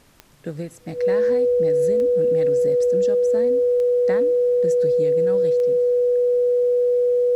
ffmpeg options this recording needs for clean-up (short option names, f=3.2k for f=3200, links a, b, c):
-af "adeclick=t=4,bandreject=f=490:w=30,agate=range=-21dB:threshold=-24dB"